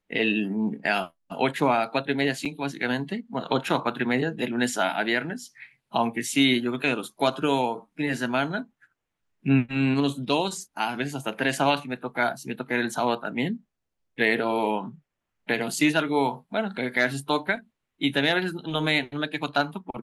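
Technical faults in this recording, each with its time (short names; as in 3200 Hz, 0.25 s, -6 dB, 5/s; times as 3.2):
2.45–2.46 gap 6.2 ms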